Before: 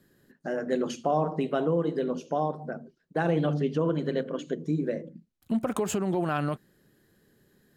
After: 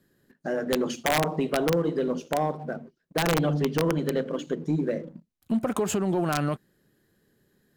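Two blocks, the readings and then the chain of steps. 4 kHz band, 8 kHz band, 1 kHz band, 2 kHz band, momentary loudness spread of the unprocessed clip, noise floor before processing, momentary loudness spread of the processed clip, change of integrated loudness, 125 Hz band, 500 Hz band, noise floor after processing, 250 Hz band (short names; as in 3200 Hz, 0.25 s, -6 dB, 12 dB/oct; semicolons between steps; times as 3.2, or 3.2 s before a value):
+9.0 dB, +6.5 dB, +1.5 dB, +5.5 dB, 10 LU, -70 dBFS, 9 LU, +2.0 dB, +2.0 dB, +1.5 dB, -73 dBFS, +2.0 dB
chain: sample leveller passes 1; wrapped overs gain 15.5 dB; gain -1 dB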